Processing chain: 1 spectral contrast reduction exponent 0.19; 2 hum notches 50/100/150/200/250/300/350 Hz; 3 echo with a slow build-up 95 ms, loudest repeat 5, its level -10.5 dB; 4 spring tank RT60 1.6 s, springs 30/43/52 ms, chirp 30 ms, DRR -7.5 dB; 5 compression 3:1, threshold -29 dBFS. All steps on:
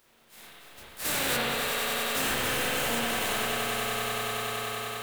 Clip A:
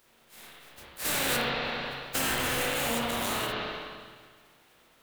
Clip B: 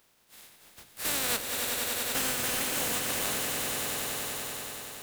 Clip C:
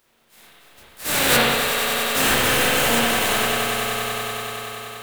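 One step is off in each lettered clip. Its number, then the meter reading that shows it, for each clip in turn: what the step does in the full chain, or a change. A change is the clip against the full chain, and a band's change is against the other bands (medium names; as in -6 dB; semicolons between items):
3, momentary loudness spread change +14 LU; 4, crest factor change +3.0 dB; 5, mean gain reduction 6.0 dB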